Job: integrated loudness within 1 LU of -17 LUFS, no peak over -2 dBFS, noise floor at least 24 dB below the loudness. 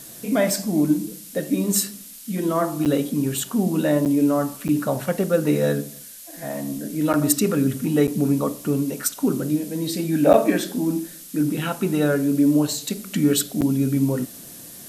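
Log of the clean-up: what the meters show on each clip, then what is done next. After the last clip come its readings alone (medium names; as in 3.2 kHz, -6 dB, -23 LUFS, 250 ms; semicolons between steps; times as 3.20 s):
dropouts 7; longest dropout 8.4 ms; noise floor -41 dBFS; noise floor target -46 dBFS; loudness -22.0 LUFS; peak level -2.0 dBFS; loudness target -17.0 LUFS
-> interpolate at 2.85/4.05/4.68/7.13/8.07/10.33/13.61 s, 8.4 ms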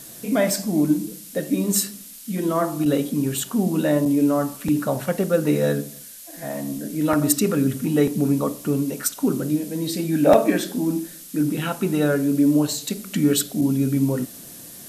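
dropouts 0; noise floor -41 dBFS; noise floor target -46 dBFS
-> noise print and reduce 6 dB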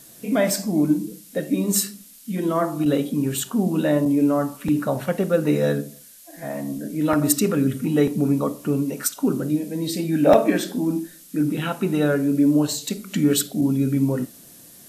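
noise floor -47 dBFS; loudness -22.0 LUFS; peak level -2.0 dBFS; loudness target -17.0 LUFS
-> trim +5 dB; peak limiter -2 dBFS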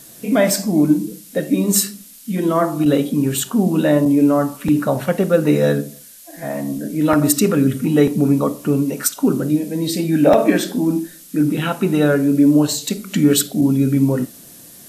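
loudness -17.0 LUFS; peak level -2.0 dBFS; noise floor -42 dBFS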